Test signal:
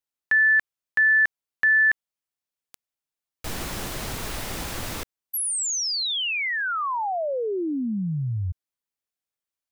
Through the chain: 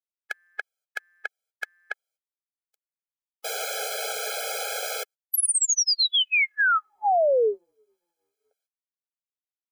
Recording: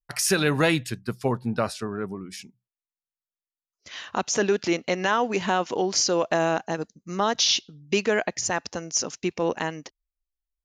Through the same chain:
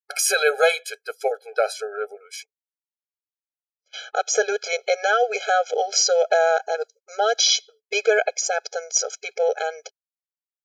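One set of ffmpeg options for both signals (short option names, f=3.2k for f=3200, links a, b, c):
-af "agate=range=-26dB:threshold=-38dB:ratio=16:release=206:detection=rms,afftfilt=real='re*eq(mod(floor(b*sr/1024/430),2),1)':imag='im*eq(mod(floor(b*sr/1024/430),2),1)':win_size=1024:overlap=0.75,volume=6.5dB"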